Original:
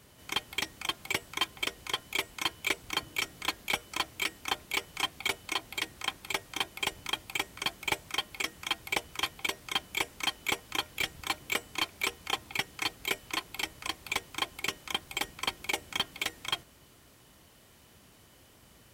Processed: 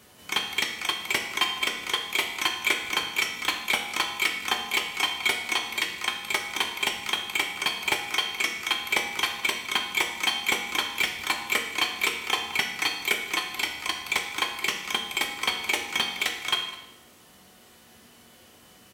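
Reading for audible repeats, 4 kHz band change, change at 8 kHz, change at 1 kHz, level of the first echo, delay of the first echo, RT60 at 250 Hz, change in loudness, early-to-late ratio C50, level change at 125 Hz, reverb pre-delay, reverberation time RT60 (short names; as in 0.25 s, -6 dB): 1, +6.5 dB, +6.0 dB, +6.0 dB, -16.5 dB, 0.205 s, 0.90 s, +7.0 dB, 5.5 dB, -0.5 dB, 4 ms, 0.95 s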